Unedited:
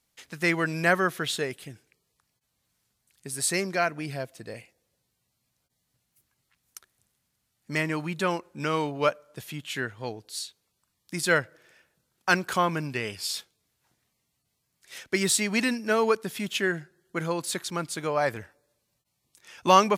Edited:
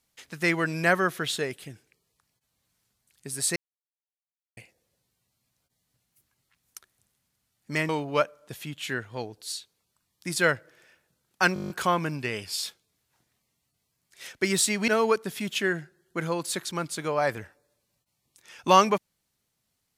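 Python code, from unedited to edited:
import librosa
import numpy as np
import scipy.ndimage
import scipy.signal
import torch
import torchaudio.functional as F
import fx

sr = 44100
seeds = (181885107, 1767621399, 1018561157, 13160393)

y = fx.edit(x, sr, fx.silence(start_s=3.56, length_s=1.01),
    fx.cut(start_s=7.89, length_s=0.87),
    fx.stutter(start_s=12.41, slice_s=0.02, count=9),
    fx.cut(start_s=15.59, length_s=0.28), tone=tone)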